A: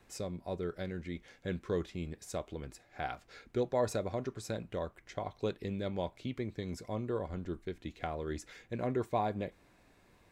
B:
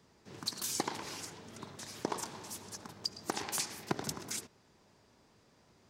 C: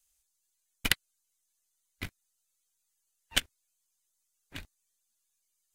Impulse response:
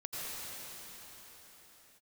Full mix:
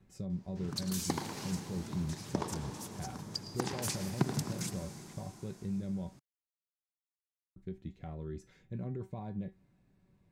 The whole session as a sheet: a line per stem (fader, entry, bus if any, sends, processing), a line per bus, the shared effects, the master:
−6.0 dB, 0.00 s, muted 0:06.17–0:07.56, bus A, no send, low-shelf EQ 280 Hz +10 dB; tuned comb filter 190 Hz, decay 0.21 s, harmonics all, mix 70%
−4.0 dB, 0.30 s, no bus, send −9.5 dB, no processing
muted
bus A: 0.0 dB, speech leveller 2 s; brickwall limiter −38 dBFS, peak gain reduction 8.5 dB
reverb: on, pre-delay 78 ms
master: parametric band 150 Hz +12 dB 1.6 octaves

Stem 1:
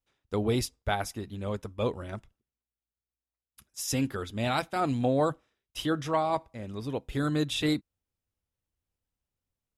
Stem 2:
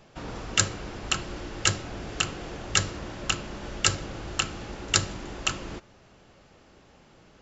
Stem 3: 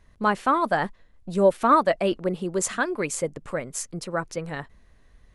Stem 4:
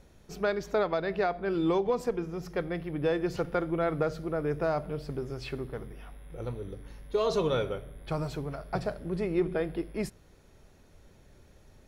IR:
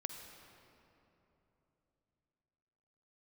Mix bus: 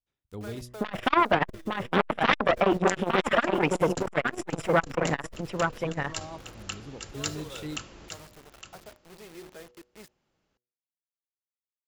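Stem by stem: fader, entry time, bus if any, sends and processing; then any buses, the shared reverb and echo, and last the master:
−16.0 dB, 0.00 s, no send, no echo send, low-shelf EQ 350 Hz +10 dB
−11.5 dB, 2.30 s, no send, echo send −10 dB, no processing
−5.0 dB, 0.60 s, no send, echo send −4.5 dB, noise gate −47 dBFS, range −15 dB; sine wavefolder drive 10 dB, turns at −7.5 dBFS; Savitzky-Golay smoothing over 25 samples
−14.0 dB, 0.00 s, no send, no echo send, low-shelf EQ 320 Hz −8 dB; bit-depth reduction 6 bits, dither none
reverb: not used
echo: single-tap delay 862 ms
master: high-shelf EQ 2,300 Hz +3 dB; hum removal 122.1 Hz, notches 5; saturating transformer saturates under 990 Hz

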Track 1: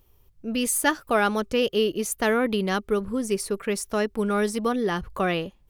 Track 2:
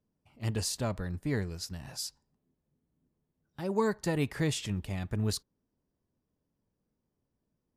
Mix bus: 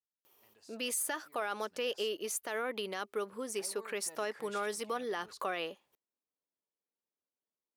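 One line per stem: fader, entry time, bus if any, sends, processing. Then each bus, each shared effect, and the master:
+1.0 dB, 0.25 s, no send, downward compressor 1.5 to 1, threshold −42 dBFS, peak gain reduction 9.5 dB
0:01.39 −21.5 dB → 0:01.90 −11 dB, 0.00 s, no send, high-shelf EQ 6,700 Hz −8.5 dB; brickwall limiter −28 dBFS, peak gain reduction 11.5 dB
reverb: not used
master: high-pass filter 490 Hz 12 dB per octave; brickwall limiter −25 dBFS, peak gain reduction 9.5 dB

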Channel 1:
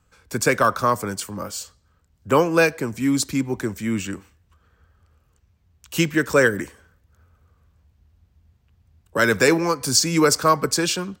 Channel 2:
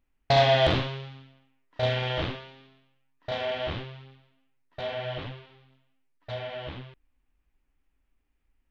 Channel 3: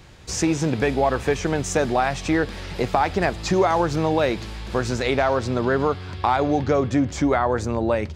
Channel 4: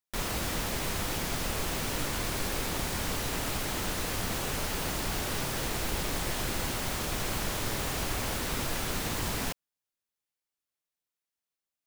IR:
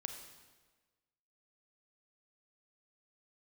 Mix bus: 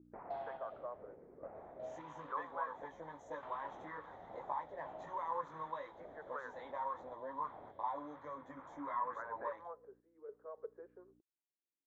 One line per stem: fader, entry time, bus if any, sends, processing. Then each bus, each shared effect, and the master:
0:09.31 −7.5 dB → 0:10.04 −16.5 dB, 0.00 s, bus A, no send, Chebyshev band-pass filter 410–1,900 Hz, order 4; mains hum 60 Hz, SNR 10 dB
−11.5 dB, 0.00 s, bus A, no send, no processing
−12.5 dB, 1.55 s, no bus, no send, EQ curve with evenly spaced ripples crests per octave 1.1, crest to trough 16 dB; multi-voice chorus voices 4, 0.49 Hz, delay 19 ms, depth 1.5 ms
−1.5 dB, 0.00 s, bus A, no send, Butterworth low-pass 2,200 Hz 48 dB per octave; low-shelf EQ 500 Hz +11 dB; automatic ducking −7 dB, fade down 1.45 s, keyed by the first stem
bus A: 0.0 dB, sample-and-hold tremolo, depth 75%; downward compressor 2.5 to 1, threshold −33 dBFS, peak gain reduction 7.5 dB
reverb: not used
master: envelope filter 320–1,100 Hz, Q 3.9, up, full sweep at −27.5 dBFS

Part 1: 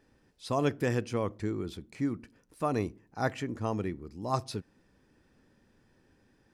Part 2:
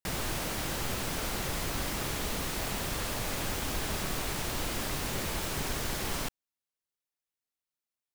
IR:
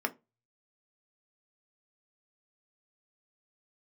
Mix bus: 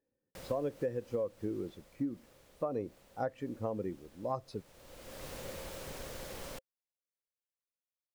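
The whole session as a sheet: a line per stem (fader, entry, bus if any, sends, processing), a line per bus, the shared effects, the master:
−2.5 dB, 0.00 s, no send, low-shelf EQ 72 Hz −10 dB; every bin expanded away from the loudest bin 1.5 to 1
−12.5 dB, 0.30 s, no send, automatic ducking −18 dB, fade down 1.85 s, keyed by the first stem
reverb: not used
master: parametric band 530 Hz +14 dB 0.32 octaves; downward compressor 12 to 1, threshold −31 dBFS, peak gain reduction 14.5 dB

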